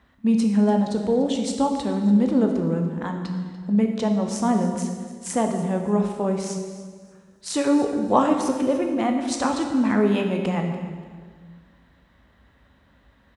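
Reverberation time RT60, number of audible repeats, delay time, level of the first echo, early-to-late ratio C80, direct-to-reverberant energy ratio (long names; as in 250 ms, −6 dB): 1.7 s, 2, 290 ms, −16.5 dB, 6.5 dB, 3.0 dB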